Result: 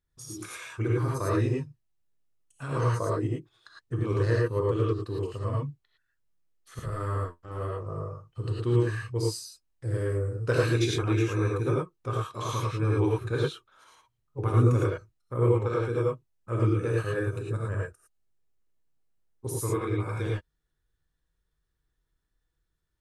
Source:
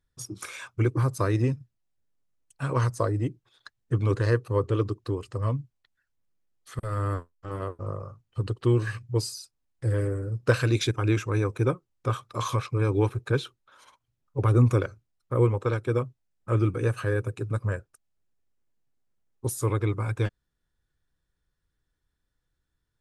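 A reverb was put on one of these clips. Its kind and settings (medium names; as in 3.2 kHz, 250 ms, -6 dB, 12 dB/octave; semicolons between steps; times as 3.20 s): gated-style reverb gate 130 ms rising, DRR -4 dB; trim -6.5 dB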